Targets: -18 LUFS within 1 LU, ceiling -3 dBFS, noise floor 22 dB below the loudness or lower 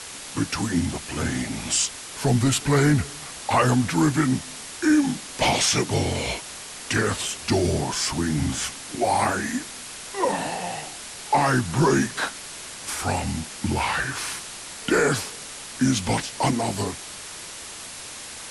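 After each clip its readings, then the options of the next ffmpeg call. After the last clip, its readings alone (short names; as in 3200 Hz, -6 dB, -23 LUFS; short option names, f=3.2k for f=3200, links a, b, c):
noise floor -38 dBFS; noise floor target -46 dBFS; loudness -24.0 LUFS; peak -9.5 dBFS; loudness target -18.0 LUFS
-> -af "afftdn=nr=8:nf=-38"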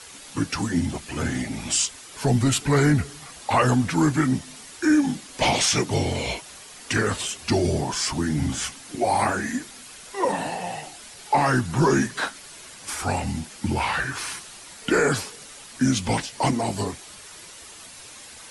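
noise floor -44 dBFS; noise floor target -46 dBFS
-> -af "afftdn=nr=6:nf=-44"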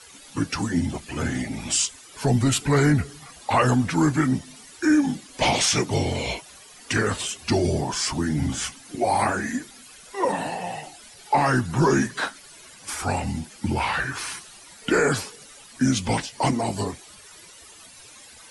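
noise floor -47 dBFS; loudness -24.0 LUFS; peak -10.0 dBFS; loudness target -18.0 LUFS
-> -af "volume=6dB"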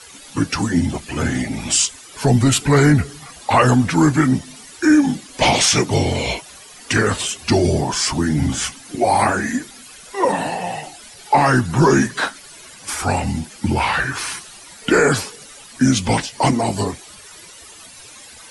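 loudness -18.0 LUFS; peak -4.0 dBFS; noise floor -41 dBFS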